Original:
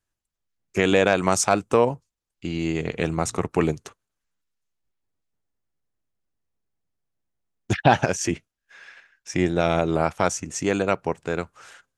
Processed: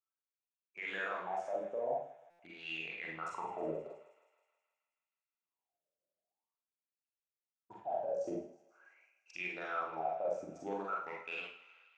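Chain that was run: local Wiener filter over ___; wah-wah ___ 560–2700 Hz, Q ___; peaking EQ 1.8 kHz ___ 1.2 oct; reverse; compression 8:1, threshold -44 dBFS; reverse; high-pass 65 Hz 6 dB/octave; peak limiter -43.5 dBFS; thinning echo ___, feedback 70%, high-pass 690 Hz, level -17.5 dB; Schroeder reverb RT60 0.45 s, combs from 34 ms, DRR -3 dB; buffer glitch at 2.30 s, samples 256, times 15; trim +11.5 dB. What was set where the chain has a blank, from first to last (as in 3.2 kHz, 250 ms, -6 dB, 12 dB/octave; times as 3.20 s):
25 samples, 0.46 Hz, 15, -9 dB, 159 ms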